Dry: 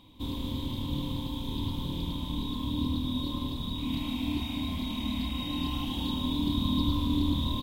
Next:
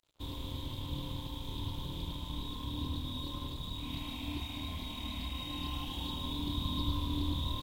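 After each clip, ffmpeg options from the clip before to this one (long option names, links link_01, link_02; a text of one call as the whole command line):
ffmpeg -i in.wav -af "aeval=exprs='sgn(val(0))*max(abs(val(0))-0.00299,0)':channel_layout=same,equalizer=frequency=230:width_type=o:width=0.61:gain=-11,volume=-3.5dB" out.wav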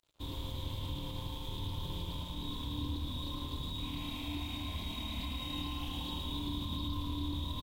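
ffmpeg -i in.wav -af "alimiter=level_in=6dB:limit=-24dB:level=0:latency=1:release=65,volume=-6dB,aecho=1:1:113:0.562" out.wav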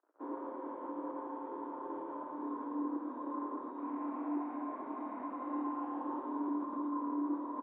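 ffmpeg -i in.wav -af "flanger=delay=2.4:depth=7.5:regen=-59:speed=1.6:shape=sinusoidal,asuperpass=centerf=670:order=12:qfactor=0.51,volume=11.5dB" out.wav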